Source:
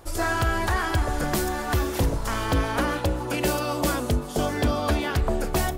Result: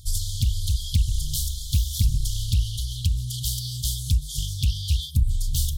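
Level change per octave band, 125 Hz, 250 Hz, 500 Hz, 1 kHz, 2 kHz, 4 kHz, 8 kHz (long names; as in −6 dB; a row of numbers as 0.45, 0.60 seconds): +4.0 dB, −13.5 dB, below −40 dB, below −40 dB, −25.0 dB, +3.5 dB, +4.0 dB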